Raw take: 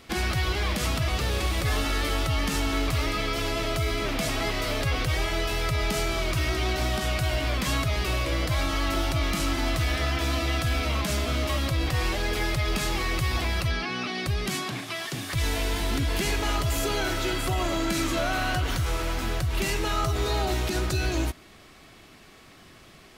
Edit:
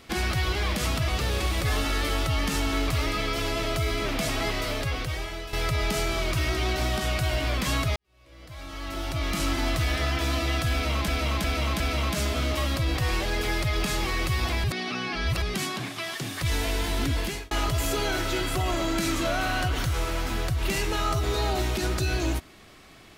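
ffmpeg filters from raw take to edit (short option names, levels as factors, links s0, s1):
-filter_complex "[0:a]asplit=9[s0][s1][s2][s3][s4][s5][s6][s7][s8];[s0]atrim=end=5.53,asetpts=PTS-STARTPTS,afade=t=out:st=4.51:d=1.02:silence=0.281838[s9];[s1]atrim=start=5.53:end=7.96,asetpts=PTS-STARTPTS,afade=t=in:d=0.004:c=hsin:silence=0.281838,afade=t=out:st=2.426:d=0.004:c=hsin[s10];[s2]atrim=start=7.96:end=11.082,asetpts=PTS-STARTPTS,afade=t=in:d=1.47:c=qua[s11];[s3]atrim=start=10.718:end=11.082[s12];[s4]atrim=start=10.718:end=11.082[s13];[s5]atrim=start=10.718:end=13.562[s14];[s6]atrim=start=13.558:end=14.342,asetpts=PTS-STARTPTS,areverse[s15];[s7]atrim=start=14.338:end=16.43,asetpts=PTS-STARTPTS,afade=t=out:st=1.742:d=0.35[s16];[s8]atrim=start=16.43,asetpts=PTS-STARTPTS,afade=t=in:d=0.004:c=hsin[s17];[s9][s10][s11]concat=n=3:v=0:a=1[s18];[s18][s12]acrossfade=d=0.004:c1=hsin:c2=hsin[s19];[s19][s13]acrossfade=d=0.004:c1=hsin:c2=hsin[s20];[s20][s14]acrossfade=d=0.004:c1=hsin:c2=hsin[s21];[s21][s15]acrossfade=d=0.004:c1=hsin:c2=hsin[s22];[s16][s17]concat=n=2:v=0:a=1[s23];[s22][s23]acrossfade=d=0.004:c1=hsin:c2=hsin"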